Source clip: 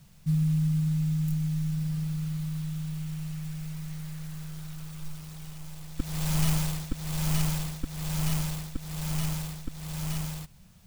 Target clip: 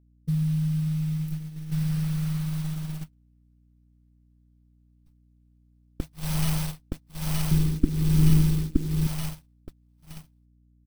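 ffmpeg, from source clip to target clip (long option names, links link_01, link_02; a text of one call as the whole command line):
ffmpeg -i in.wav -filter_complex "[0:a]bandreject=frequency=7000:width=5.4,asplit=2[link_01][link_02];[link_02]aecho=0:1:967|1934|2901:0.0944|0.0321|0.0109[link_03];[link_01][link_03]amix=inputs=2:normalize=0,aeval=exprs='val(0)*gte(abs(val(0)),0.00668)':channel_layout=same,asettb=1/sr,asplit=3[link_04][link_05][link_06];[link_04]atrim=end=1.714[link_07];[link_05]atrim=start=1.71:end=3.04,asetpts=PTS-STARTPTS,afade=type=in:duration=0.004:curve=qsin,afade=type=out:start_time=1.326:duration=0.004:curve=qsin,acontrast=28[link_08];[link_06]atrim=start=3.036[link_09];[link_07][link_08]acrossfade=duration=0.004:curve1=hsin:curve2=qsin[link_10];[link_10][link_09]acrossfade=duration=0.004:curve1=qsin:curve2=hsin,asettb=1/sr,asplit=3[link_11][link_12][link_13];[link_11]atrim=end=7.514[link_14];[link_12]atrim=start=7.51:end=9.07,asetpts=PTS-STARTPTS,afade=type=in:duration=0.004:curve=qsin,afade=type=out:start_time=1.556:duration=0.004:curve=qsin,lowshelf=frequency=470:width_type=q:width=3:gain=10[link_15];[link_13]atrim=start=9.066[link_16];[link_14][link_15]acrossfade=duration=0.004:curve1=hsin:curve2=qsin[link_17];[link_17][link_16]acrossfade=duration=0.004:curve1=qsin:curve2=hsin,agate=range=-47dB:threshold=-28dB:ratio=16:detection=peak,aeval=exprs='val(0)+0.00112*(sin(2*PI*60*n/s)+sin(2*PI*2*60*n/s)/2+sin(2*PI*3*60*n/s)/3+sin(2*PI*4*60*n/s)/4+sin(2*PI*5*60*n/s)/5)':channel_layout=same" out.wav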